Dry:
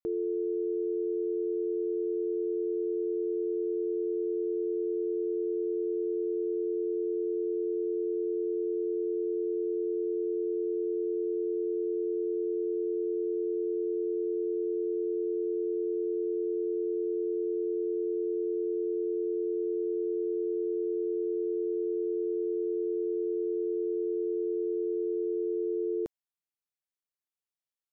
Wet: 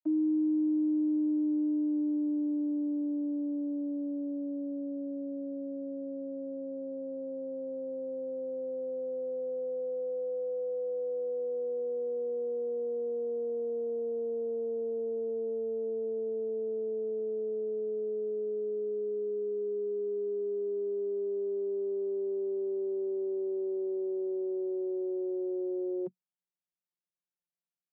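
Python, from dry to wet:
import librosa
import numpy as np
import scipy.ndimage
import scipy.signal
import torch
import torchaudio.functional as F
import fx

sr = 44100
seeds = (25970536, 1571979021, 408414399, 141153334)

y = fx.vocoder_glide(x, sr, note=63, semitones=-10)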